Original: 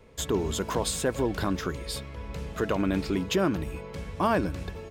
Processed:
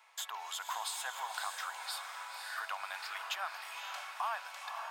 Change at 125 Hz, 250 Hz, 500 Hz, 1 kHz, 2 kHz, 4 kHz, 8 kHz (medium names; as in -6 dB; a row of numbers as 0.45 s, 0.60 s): under -40 dB, under -40 dB, -24.0 dB, -5.0 dB, -3.0 dB, -4.5 dB, -7.5 dB